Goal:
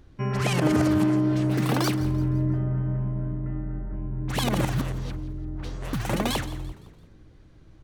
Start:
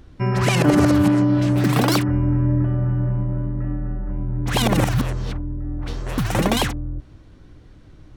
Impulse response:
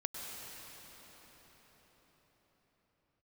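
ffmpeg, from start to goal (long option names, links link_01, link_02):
-filter_complex "[0:a]asetrate=45938,aresample=44100,asplit=5[link_01][link_02][link_03][link_04][link_05];[link_02]adelay=170,afreqshift=59,volume=-17.5dB[link_06];[link_03]adelay=340,afreqshift=118,volume=-24.8dB[link_07];[link_04]adelay=510,afreqshift=177,volume=-32.2dB[link_08];[link_05]adelay=680,afreqshift=236,volume=-39.5dB[link_09];[link_01][link_06][link_07][link_08][link_09]amix=inputs=5:normalize=0,asplit=2[link_10][link_11];[1:a]atrim=start_sample=2205,afade=type=out:start_time=0.44:duration=0.01,atrim=end_sample=19845,asetrate=61740,aresample=44100[link_12];[link_11][link_12]afir=irnorm=-1:irlink=0,volume=-13.5dB[link_13];[link_10][link_13]amix=inputs=2:normalize=0,volume=-7.5dB"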